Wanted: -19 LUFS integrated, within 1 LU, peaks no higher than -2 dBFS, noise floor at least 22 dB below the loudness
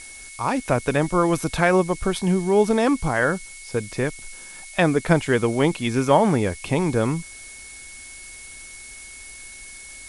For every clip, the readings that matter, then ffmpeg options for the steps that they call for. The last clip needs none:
steady tone 2.2 kHz; tone level -42 dBFS; noise floor -41 dBFS; noise floor target -44 dBFS; loudness -21.5 LUFS; peak level -1.5 dBFS; loudness target -19.0 LUFS
-> -af "bandreject=f=2200:w=30"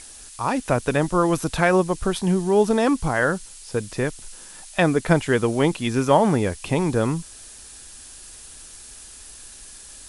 steady tone not found; noise floor -43 dBFS; noise floor target -44 dBFS
-> -af "afftdn=nr=6:nf=-43"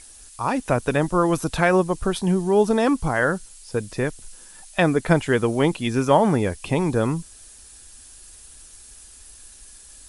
noise floor -46 dBFS; loudness -21.5 LUFS; peak level -2.0 dBFS; loudness target -19.0 LUFS
-> -af "volume=1.33,alimiter=limit=0.794:level=0:latency=1"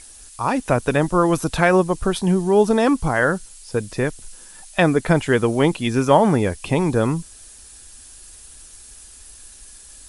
loudness -19.5 LUFS; peak level -2.0 dBFS; noise floor -44 dBFS

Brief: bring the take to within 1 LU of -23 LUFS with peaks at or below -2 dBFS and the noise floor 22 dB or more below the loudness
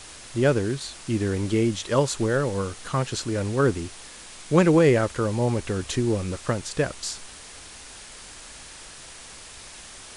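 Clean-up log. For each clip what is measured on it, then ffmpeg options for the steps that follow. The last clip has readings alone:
noise floor -44 dBFS; noise floor target -47 dBFS; loudness -24.5 LUFS; peak level -4.5 dBFS; loudness target -23.0 LUFS
-> -af "afftdn=nr=6:nf=-44"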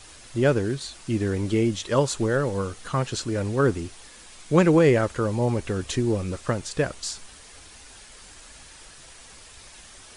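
noise floor -47 dBFS; loudness -24.5 LUFS; peak level -4.5 dBFS; loudness target -23.0 LUFS
-> -af "volume=1.19"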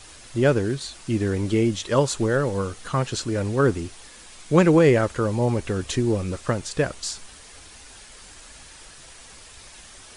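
loudness -23.0 LUFS; peak level -3.0 dBFS; noise floor -46 dBFS

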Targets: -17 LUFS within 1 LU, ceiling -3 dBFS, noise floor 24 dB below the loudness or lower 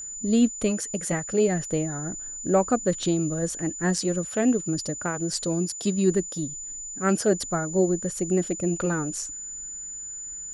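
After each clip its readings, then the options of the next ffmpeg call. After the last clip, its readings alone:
steady tone 7 kHz; tone level -34 dBFS; loudness -26.0 LUFS; peak level -8.5 dBFS; loudness target -17.0 LUFS
-> -af "bandreject=f=7000:w=30"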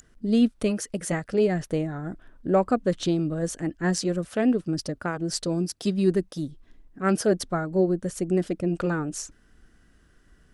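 steady tone not found; loudness -26.0 LUFS; peak level -9.0 dBFS; loudness target -17.0 LUFS
-> -af "volume=2.82,alimiter=limit=0.708:level=0:latency=1"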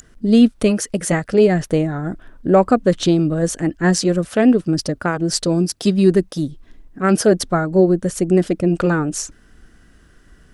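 loudness -17.5 LUFS; peak level -3.0 dBFS; noise floor -51 dBFS

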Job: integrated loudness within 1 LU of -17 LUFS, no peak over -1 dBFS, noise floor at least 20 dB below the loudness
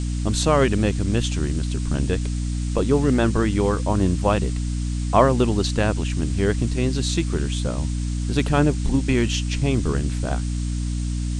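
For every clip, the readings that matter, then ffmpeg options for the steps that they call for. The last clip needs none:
hum 60 Hz; highest harmonic 300 Hz; hum level -22 dBFS; noise floor -25 dBFS; noise floor target -42 dBFS; loudness -22.0 LUFS; peak level -2.0 dBFS; loudness target -17.0 LUFS
-> -af "bandreject=f=60:t=h:w=6,bandreject=f=120:t=h:w=6,bandreject=f=180:t=h:w=6,bandreject=f=240:t=h:w=6,bandreject=f=300:t=h:w=6"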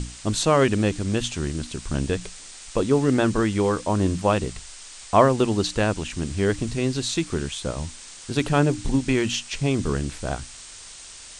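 hum not found; noise floor -42 dBFS; noise floor target -44 dBFS
-> -af "afftdn=nr=6:nf=-42"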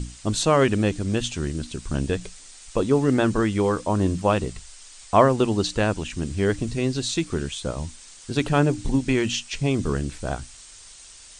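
noise floor -46 dBFS; loudness -23.5 LUFS; peak level -3.0 dBFS; loudness target -17.0 LUFS
-> -af "volume=2.11,alimiter=limit=0.891:level=0:latency=1"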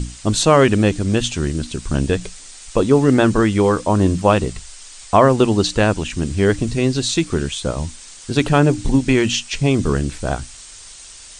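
loudness -17.5 LUFS; peak level -1.0 dBFS; noise floor -39 dBFS

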